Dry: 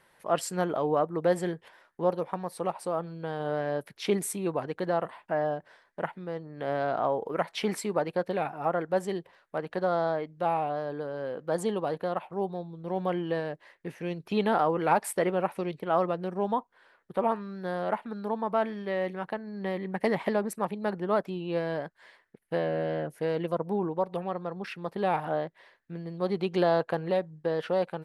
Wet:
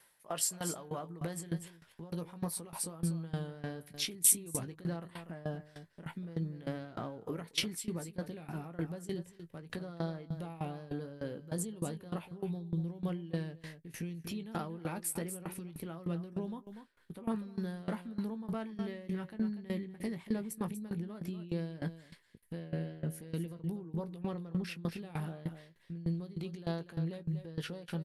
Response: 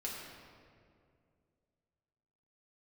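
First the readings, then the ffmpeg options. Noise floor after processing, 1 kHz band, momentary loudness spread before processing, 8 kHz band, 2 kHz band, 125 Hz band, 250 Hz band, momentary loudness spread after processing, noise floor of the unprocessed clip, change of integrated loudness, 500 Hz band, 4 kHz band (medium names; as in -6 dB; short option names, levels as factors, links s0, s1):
-63 dBFS, -18.0 dB, 9 LU, +7.0 dB, -11.5 dB, -0.5 dB, -4.5 dB, 8 LU, -67 dBFS, -8.0 dB, -15.5 dB, -1.0 dB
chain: -filter_complex "[0:a]agate=range=0.447:threshold=0.002:ratio=16:detection=peak,asubboost=boost=8.5:cutoff=240,aresample=32000,aresample=44100,acompressor=threshold=0.0631:ratio=6,alimiter=level_in=1.41:limit=0.0631:level=0:latency=1:release=69,volume=0.708,crystalizer=i=5:c=0,asplit=2[s0][s1];[s1]adelay=18,volume=0.355[s2];[s0][s2]amix=inputs=2:normalize=0,aecho=1:1:241:0.251,aeval=exprs='val(0)*pow(10,-19*if(lt(mod(3.3*n/s,1),2*abs(3.3)/1000),1-mod(3.3*n/s,1)/(2*abs(3.3)/1000),(mod(3.3*n/s,1)-2*abs(3.3)/1000)/(1-2*abs(3.3)/1000))/20)':c=same"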